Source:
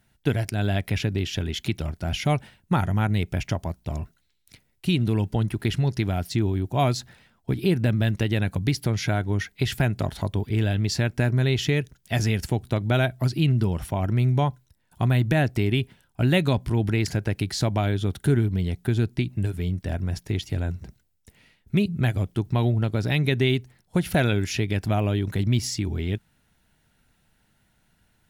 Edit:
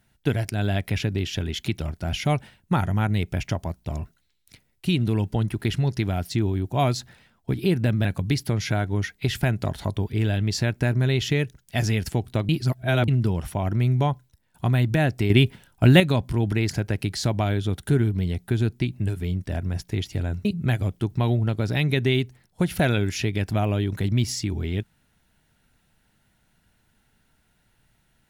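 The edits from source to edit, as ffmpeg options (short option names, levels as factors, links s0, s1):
-filter_complex "[0:a]asplit=7[s0][s1][s2][s3][s4][s5][s6];[s0]atrim=end=8.052[s7];[s1]atrim=start=8.418:end=12.862[s8];[s2]atrim=start=12.858:end=13.452,asetpts=PTS-STARTPTS,areverse[s9];[s3]atrim=start=13.448:end=15.672[s10];[s4]atrim=start=15.668:end=16.372,asetpts=PTS-STARTPTS,volume=2.11[s11];[s5]atrim=start=16.368:end=20.822[s12];[s6]atrim=start=21.798[s13];[s7][s8]acrossfade=d=0.004:c1=hsin:c2=hsin[s14];[s14][s9]acrossfade=d=0.004:c1=hsin:c2=hsin[s15];[s15][s10]acrossfade=d=0.004:c1=hsin:c2=hsin[s16];[s16][s11]acrossfade=d=0.004:c1=hsin:c2=hsin[s17];[s17][s12]acrossfade=d=0.004:c1=hsin:c2=hsin[s18];[s18][s13]acrossfade=d=0.004:c1=hsin:c2=hsin"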